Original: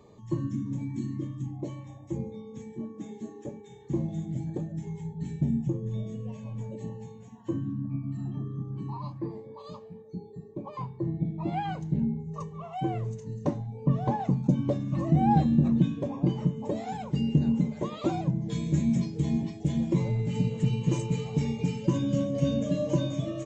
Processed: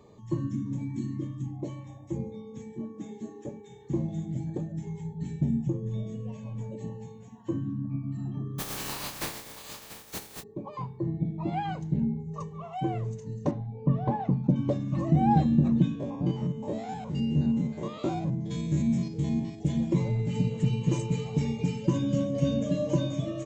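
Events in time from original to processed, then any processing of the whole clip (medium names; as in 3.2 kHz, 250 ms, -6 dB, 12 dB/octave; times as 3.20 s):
8.58–10.42 s: spectral contrast reduction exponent 0.19
13.51–14.56 s: distance through air 210 m
15.95–19.59 s: spectrogram pixelated in time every 50 ms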